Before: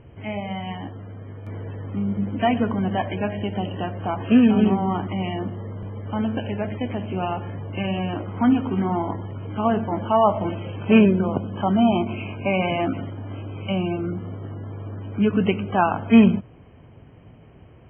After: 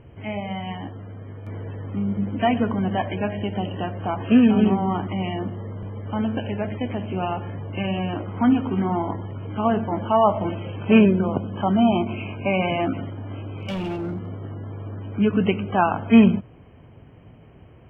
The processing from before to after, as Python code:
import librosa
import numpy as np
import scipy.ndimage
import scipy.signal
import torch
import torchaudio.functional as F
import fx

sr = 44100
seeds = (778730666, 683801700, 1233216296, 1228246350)

y = fx.clip_hard(x, sr, threshold_db=-24.5, at=(13.38, 14.33))